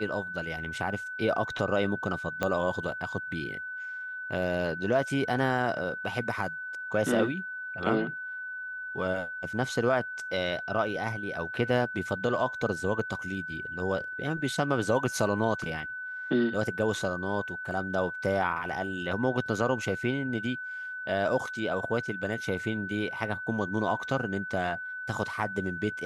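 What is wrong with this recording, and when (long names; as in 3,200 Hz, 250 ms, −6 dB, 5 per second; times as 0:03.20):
whistle 1,500 Hz −35 dBFS
0:02.43: click −15 dBFS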